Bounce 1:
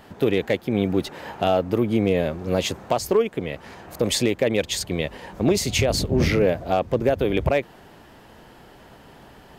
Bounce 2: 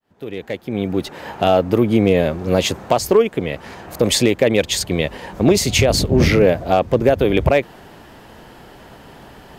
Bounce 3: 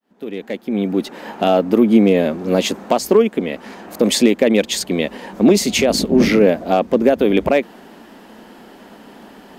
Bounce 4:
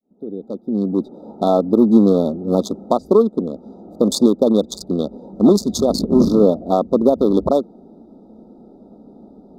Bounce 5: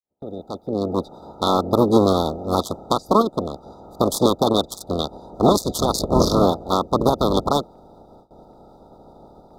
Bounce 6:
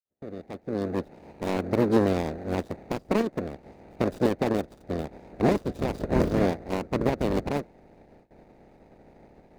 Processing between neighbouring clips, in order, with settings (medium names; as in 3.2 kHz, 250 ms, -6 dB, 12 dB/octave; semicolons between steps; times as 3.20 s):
fade-in on the opening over 1.59 s; trim +6 dB
resonant low shelf 160 Hz -10.5 dB, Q 3; trim -1 dB
local Wiener filter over 41 samples; Chebyshev band-stop 1.3–3.6 kHz, order 5; trim +1 dB
spectral peaks clipped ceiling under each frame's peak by 23 dB; gate with hold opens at -35 dBFS; trim -3 dB
median filter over 41 samples; trim -5 dB